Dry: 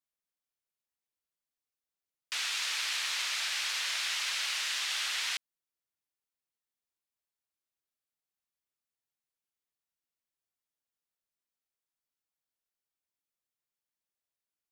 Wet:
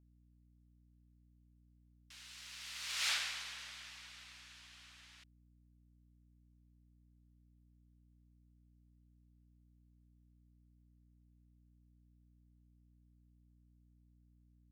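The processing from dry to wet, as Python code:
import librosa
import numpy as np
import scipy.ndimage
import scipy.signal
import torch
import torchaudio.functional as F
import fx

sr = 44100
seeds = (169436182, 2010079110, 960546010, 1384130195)

y = fx.doppler_pass(x, sr, speed_mps=32, closest_m=2.5, pass_at_s=3.09)
y = fx.add_hum(y, sr, base_hz=60, snr_db=16)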